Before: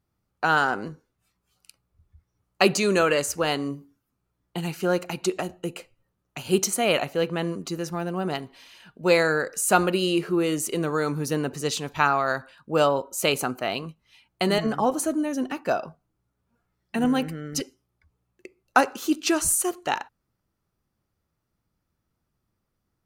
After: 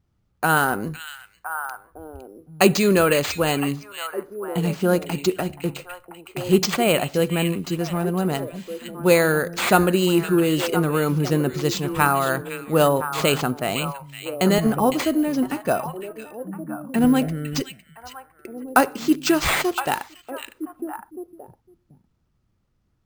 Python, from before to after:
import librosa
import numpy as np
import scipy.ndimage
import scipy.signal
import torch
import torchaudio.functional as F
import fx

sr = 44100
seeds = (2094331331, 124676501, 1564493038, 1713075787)

p1 = fx.low_shelf(x, sr, hz=230.0, db=9.5)
p2 = p1 + fx.echo_stepped(p1, sr, ms=508, hz=2900.0, octaves=-1.4, feedback_pct=70, wet_db=-5, dry=0)
p3 = np.repeat(p2[::4], 4)[:len(p2)]
y = F.gain(torch.from_numpy(p3), 1.5).numpy()